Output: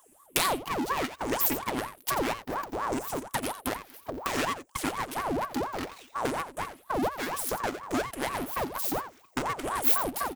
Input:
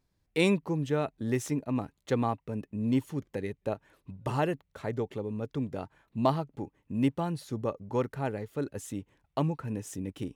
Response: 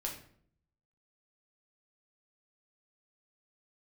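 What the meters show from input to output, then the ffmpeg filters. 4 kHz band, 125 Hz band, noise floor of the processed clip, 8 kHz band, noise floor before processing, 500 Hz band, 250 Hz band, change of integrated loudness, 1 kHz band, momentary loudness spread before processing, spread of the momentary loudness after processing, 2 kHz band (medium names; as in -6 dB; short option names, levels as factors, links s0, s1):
+7.5 dB, -10.5 dB, -60 dBFS, +11.5 dB, -77 dBFS, -1.0 dB, -4.0 dB, +2.0 dB, +6.5 dB, 10 LU, 9 LU, +7.0 dB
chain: -af "afftfilt=real='re*pow(10,20/40*sin(2*PI*(0.51*log(max(b,1)*sr/1024/100)/log(2)-(0.62)*(pts-256)/sr)))':imag='im*pow(10,20/40*sin(2*PI*(0.51*log(max(b,1)*sr/1024/100)/log(2)-(0.62)*(pts-256)/sr)))':win_size=1024:overlap=0.75,equalizer=f=3600:t=o:w=1.5:g=-10.5,aecho=1:1:3.8:0.4,acompressor=threshold=0.0178:ratio=6,aeval=exprs='abs(val(0))':c=same,aeval=exprs='0.0531*(cos(1*acos(clip(val(0)/0.0531,-1,1)))-cos(1*PI/2))+0.000376*(cos(4*acos(clip(val(0)/0.0531,-1,1)))-cos(4*PI/2))':c=same,crystalizer=i=7.5:c=0,aecho=1:1:87:0.266,aeval=exprs='val(0)*sin(2*PI*700*n/s+700*0.65/4.2*sin(2*PI*4.2*n/s))':c=same,volume=2.51"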